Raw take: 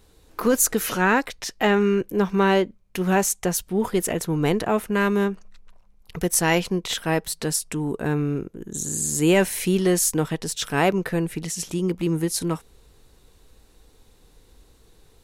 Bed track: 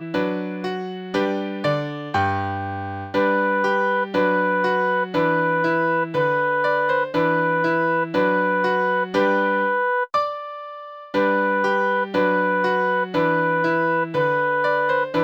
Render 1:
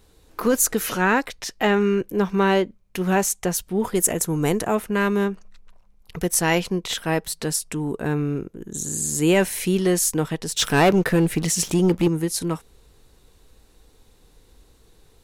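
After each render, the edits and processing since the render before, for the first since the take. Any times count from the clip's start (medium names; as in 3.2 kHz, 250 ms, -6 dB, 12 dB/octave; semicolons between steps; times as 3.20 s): 3.95–4.75 s: resonant high shelf 5.4 kHz +7.5 dB, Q 1.5; 10.56–12.08 s: waveshaping leveller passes 2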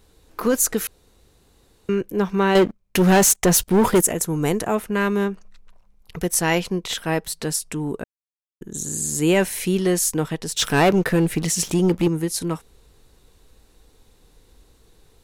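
0.87–1.89 s: room tone; 2.55–4.01 s: waveshaping leveller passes 3; 8.04–8.61 s: mute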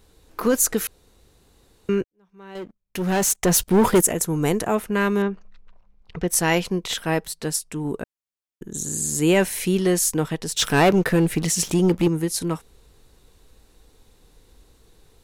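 2.04–3.68 s: fade in quadratic; 5.22–6.28 s: distance through air 160 m; 7.27–7.85 s: upward expansion, over -35 dBFS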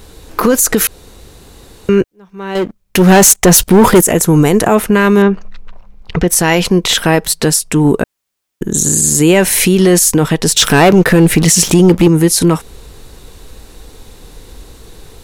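in parallel at -3 dB: compression, threshold -27 dBFS, peak gain reduction 13 dB; on the sum: loudness maximiser +14 dB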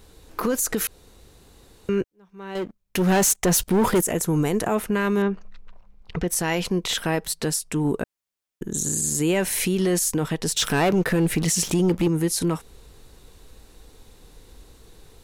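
trim -13 dB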